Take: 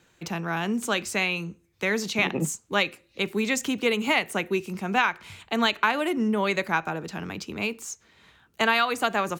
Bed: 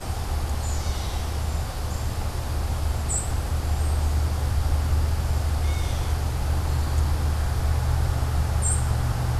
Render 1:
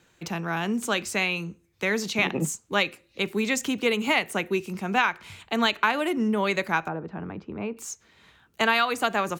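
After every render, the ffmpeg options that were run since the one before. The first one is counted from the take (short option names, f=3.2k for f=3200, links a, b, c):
-filter_complex "[0:a]asettb=1/sr,asplit=3[a][b][c];[a]atrim=end=6.884[d];[b]atrim=start=6.88:end=7.77,asetpts=PTS-STARTPTS,afade=t=in:d=0.004:c=qsin,afade=t=out:st=0.886:d=0.004:c=qsin,lowpass=1.2k[e];[c]atrim=start=7.766[f];[d][e]acrossfade=d=0.004:c1=hsin:c2=qsin[g];[g][f]acrossfade=d=0.004:c1=qsin:c2=hsin"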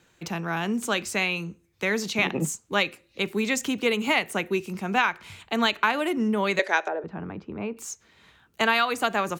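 -filter_complex "[0:a]asettb=1/sr,asplit=3[a][b][c];[a]atrim=end=6.594[d];[b]atrim=start=6.59:end=7.04,asetpts=PTS-STARTPTS,afade=t=in:d=0.004:c=qsin,afade=t=out:st=0.446:d=0.004:c=qsin,highpass=f=360:w=0.5412,highpass=f=360:w=1.3066,equalizer=f=420:t=q:w=4:g=7,equalizer=f=610:t=q:w=4:g=8,equalizer=f=1.2k:t=q:w=4:g=-5,equalizer=f=1.8k:t=q:w=4:g=8,equalizer=f=3.5k:t=q:w=4:g=7,equalizer=f=5.9k:t=q:w=4:g=8,lowpass=f=9.5k:w=0.5412,lowpass=f=9.5k:w=1.3066[e];[c]atrim=start=7.036[f];[d][e]acrossfade=d=0.004:c1=hsin:c2=qsin[g];[g][f]acrossfade=d=0.004:c1=qsin:c2=hsin"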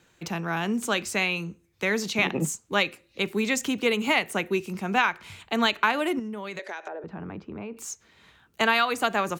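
-filter_complex "[0:a]asettb=1/sr,asplit=3[a][b][c];[a]atrim=end=6.194[d];[b]atrim=start=6.19:end=7.76,asetpts=PTS-STARTPTS,afade=t=in:d=0.004:c=qsin,afade=t=out:st=1.566:d=0.004:c=qsin,acompressor=threshold=-32dB:ratio=6:attack=3.2:release=140:knee=1:detection=peak[e];[c]atrim=start=7.756[f];[d][e]acrossfade=d=0.004:c1=hsin:c2=qsin[g];[g][f]acrossfade=d=0.004:c1=qsin:c2=hsin"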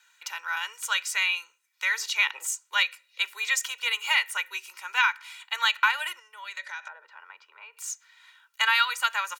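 -af "highpass=f=1.1k:w=0.5412,highpass=f=1.1k:w=1.3066,aecho=1:1:2.1:0.78"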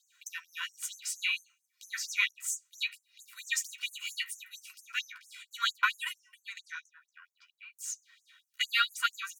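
-af "flanger=delay=7.3:depth=7.5:regen=20:speed=0.64:shape=sinusoidal,afftfilt=real='re*gte(b*sr/1024,970*pow(5900/970,0.5+0.5*sin(2*PI*4.4*pts/sr)))':imag='im*gte(b*sr/1024,970*pow(5900/970,0.5+0.5*sin(2*PI*4.4*pts/sr)))':win_size=1024:overlap=0.75"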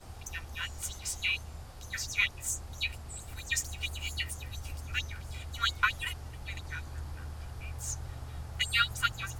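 -filter_complex "[1:a]volume=-18dB[a];[0:a][a]amix=inputs=2:normalize=0"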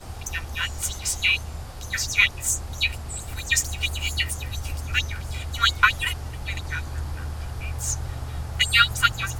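-af "volume=10dB"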